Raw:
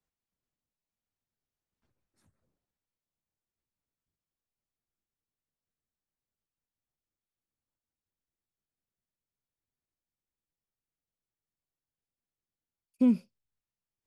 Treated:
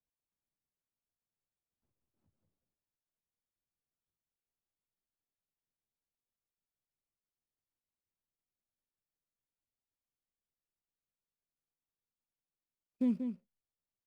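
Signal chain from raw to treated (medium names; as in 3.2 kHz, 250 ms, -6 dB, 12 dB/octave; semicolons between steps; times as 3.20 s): median filter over 25 samples; echo from a far wall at 32 m, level -7 dB; trim -7.5 dB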